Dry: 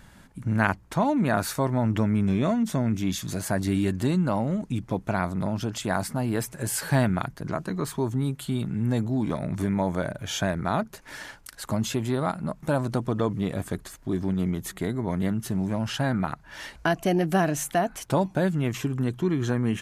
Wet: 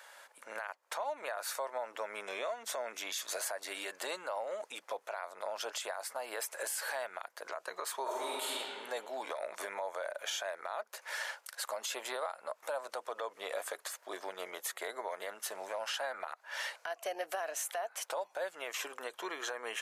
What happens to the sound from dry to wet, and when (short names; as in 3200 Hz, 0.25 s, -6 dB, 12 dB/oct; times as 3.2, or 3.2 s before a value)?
8.02–8.52 reverb throw, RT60 2 s, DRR -6.5 dB
whole clip: Chebyshev high-pass 520 Hz, order 4; compressor 10:1, threshold -34 dBFS; limiter -29 dBFS; gain +2 dB